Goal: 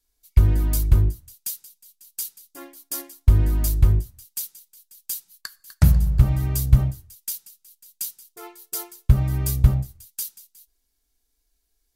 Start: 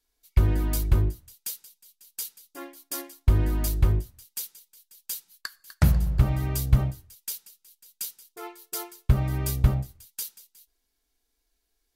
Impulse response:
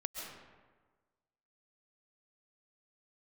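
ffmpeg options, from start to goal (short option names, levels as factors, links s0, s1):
-filter_complex "[0:a]asplit=2[s0][s1];[s1]bass=f=250:g=12,treble=f=4000:g=11[s2];[1:a]atrim=start_sample=2205,atrim=end_sample=3969,asetrate=38808,aresample=44100[s3];[s2][s3]afir=irnorm=-1:irlink=0,volume=0.891[s4];[s0][s4]amix=inputs=2:normalize=0,volume=0.473"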